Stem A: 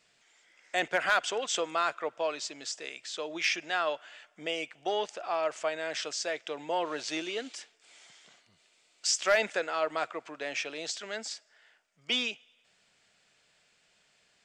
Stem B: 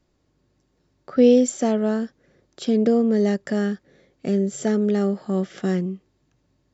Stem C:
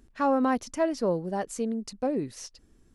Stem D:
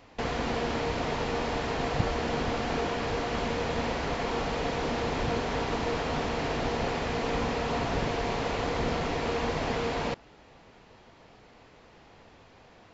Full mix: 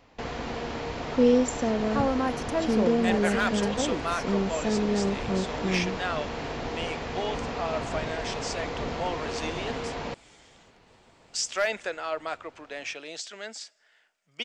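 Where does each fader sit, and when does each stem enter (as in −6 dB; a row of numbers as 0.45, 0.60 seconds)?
−1.5, −6.0, −2.5, −3.5 decibels; 2.30, 0.00, 1.75, 0.00 seconds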